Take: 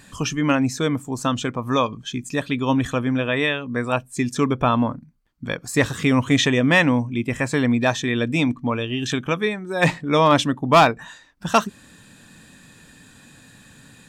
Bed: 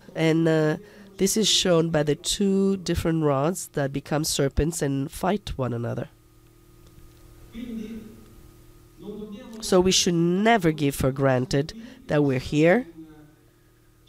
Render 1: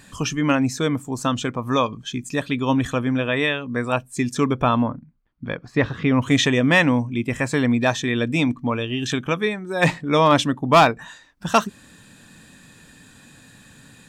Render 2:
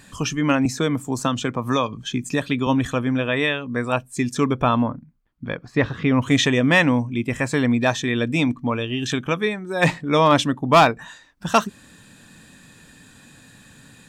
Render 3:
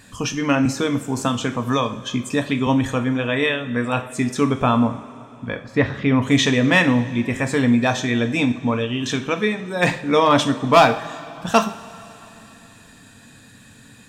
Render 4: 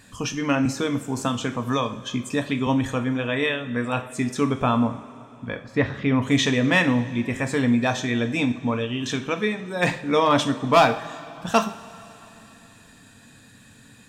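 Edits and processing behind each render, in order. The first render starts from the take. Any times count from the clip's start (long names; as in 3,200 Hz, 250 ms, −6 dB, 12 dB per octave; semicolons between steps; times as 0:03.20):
0:04.82–0:06.22: high-frequency loss of the air 280 metres
0:00.65–0:02.67: multiband upward and downward compressor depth 70%
coupled-rooms reverb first 0.43 s, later 3.4 s, from −17 dB, DRR 6 dB
level −3.5 dB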